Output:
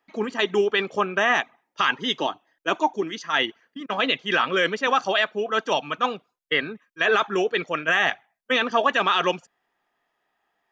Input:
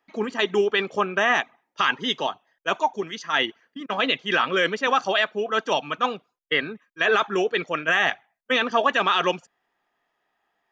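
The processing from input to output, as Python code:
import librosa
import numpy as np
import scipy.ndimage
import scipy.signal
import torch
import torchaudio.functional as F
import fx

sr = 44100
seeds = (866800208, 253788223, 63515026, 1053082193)

y = fx.peak_eq(x, sr, hz=310.0, db=11.5, octaves=0.33, at=(2.2, 3.19))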